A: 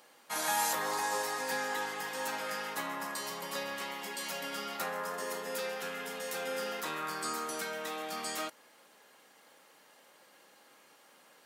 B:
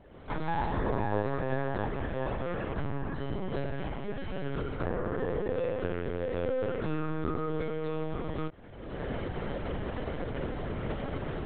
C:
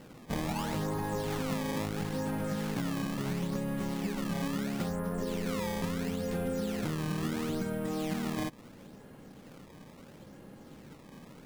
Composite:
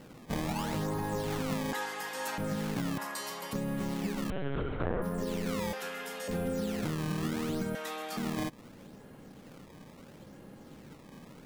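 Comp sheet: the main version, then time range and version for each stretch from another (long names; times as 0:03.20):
C
0:01.73–0:02.38: punch in from A
0:02.98–0:03.53: punch in from A
0:04.30–0:05.02: punch in from B
0:05.73–0:06.28: punch in from A
0:07.75–0:08.17: punch in from A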